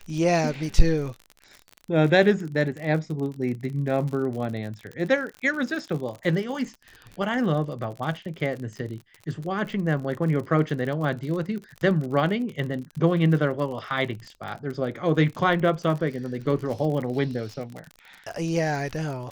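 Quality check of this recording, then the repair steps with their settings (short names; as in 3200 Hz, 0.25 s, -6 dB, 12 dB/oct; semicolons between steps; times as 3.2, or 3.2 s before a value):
crackle 47/s -32 dBFS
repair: de-click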